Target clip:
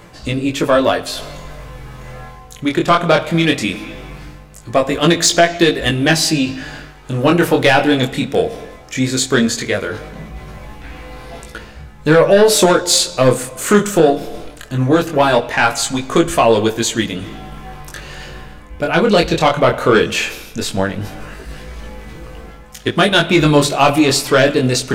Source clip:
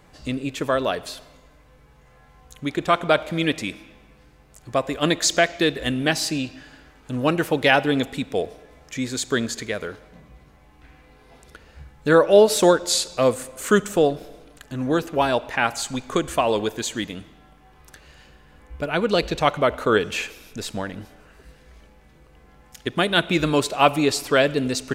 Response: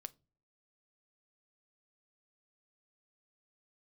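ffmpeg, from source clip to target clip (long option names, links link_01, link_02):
-filter_complex "[0:a]areverse,acompressor=mode=upward:threshold=-32dB:ratio=2.5,areverse,asoftclip=type=tanh:threshold=-11.5dB,flanger=delay=17.5:depth=6.8:speed=0.18[link_01];[1:a]atrim=start_sample=2205[link_02];[link_01][link_02]afir=irnorm=-1:irlink=0,alimiter=level_in=19dB:limit=-1dB:release=50:level=0:latency=1,volume=-1dB"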